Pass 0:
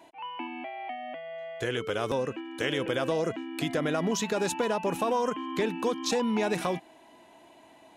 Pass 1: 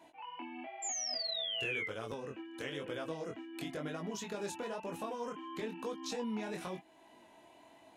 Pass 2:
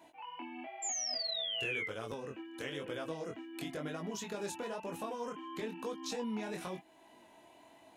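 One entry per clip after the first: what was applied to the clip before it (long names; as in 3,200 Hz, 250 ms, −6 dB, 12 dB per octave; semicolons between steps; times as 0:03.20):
downward compressor 1.5 to 1, threshold −45 dBFS, peak gain reduction 8 dB; sound drawn into the spectrogram fall, 0:00.82–0:01.87, 2,000–7,400 Hz −33 dBFS; chorus effect 1 Hz, delay 18 ms, depth 6.9 ms; level −2 dB
high-shelf EQ 10,000 Hz +4.5 dB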